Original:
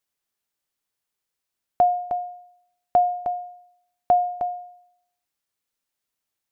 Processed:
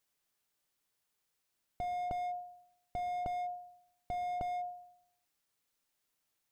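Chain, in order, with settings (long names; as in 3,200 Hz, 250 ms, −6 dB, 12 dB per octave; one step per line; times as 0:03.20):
in parallel at −1 dB: downward compressor 10 to 1, threshold −30 dBFS, peak gain reduction 16 dB
on the sum: rectangular room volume 990 cubic metres, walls furnished, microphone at 0.42 metres
slew-rate limiting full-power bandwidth 20 Hz
level −4.5 dB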